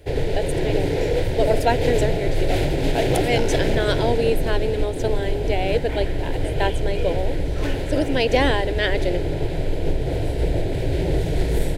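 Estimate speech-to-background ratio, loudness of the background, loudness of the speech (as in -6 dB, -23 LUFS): -0.5 dB, -24.5 LUFS, -25.0 LUFS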